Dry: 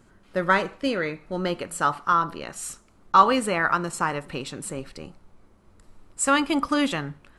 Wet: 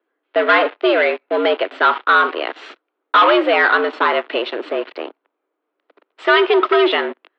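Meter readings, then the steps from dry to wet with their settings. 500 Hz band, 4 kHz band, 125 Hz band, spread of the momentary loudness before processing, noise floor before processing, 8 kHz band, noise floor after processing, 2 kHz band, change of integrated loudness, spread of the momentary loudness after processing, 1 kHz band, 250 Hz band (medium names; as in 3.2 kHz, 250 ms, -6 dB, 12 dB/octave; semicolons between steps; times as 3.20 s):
+12.5 dB, +10.5 dB, under -30 dB, 14 LU, -57 dBFS, under -25 dB, -77 dBFS, +11.0 dB, +8.0 dB, 12 LU, +6.0 dB, +3.5 dB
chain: waveshaping leveller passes 5; mistuned SSB +97 Hz 220–3500 Hz; trim -4 dB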